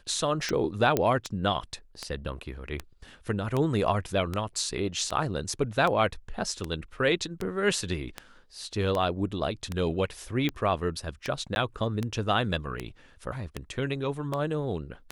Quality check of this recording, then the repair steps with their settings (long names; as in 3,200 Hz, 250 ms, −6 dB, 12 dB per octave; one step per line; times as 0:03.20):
scratch tick 78 rpm −16 dBFS
0:00.97: click −10 dBFS
0:11.55–0:11.56: drop-out 11 ms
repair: click removal
repair the gap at 0:11.55, 11 ms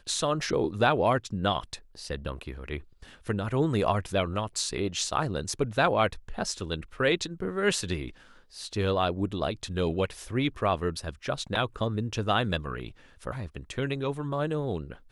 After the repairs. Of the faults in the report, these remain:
none of them is left